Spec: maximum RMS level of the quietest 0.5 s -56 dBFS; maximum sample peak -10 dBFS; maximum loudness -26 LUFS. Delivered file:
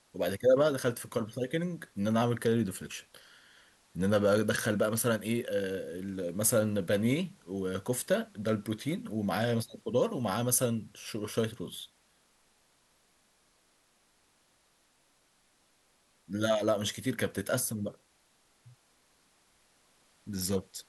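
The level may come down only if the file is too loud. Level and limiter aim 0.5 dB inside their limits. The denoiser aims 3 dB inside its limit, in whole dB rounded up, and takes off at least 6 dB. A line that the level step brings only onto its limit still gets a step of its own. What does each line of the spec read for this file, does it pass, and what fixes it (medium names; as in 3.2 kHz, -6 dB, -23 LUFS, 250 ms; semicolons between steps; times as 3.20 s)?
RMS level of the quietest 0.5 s -69 dBFS: pass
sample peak -12.5 dBFS: pass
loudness -31.0 LUFS: pass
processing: none needed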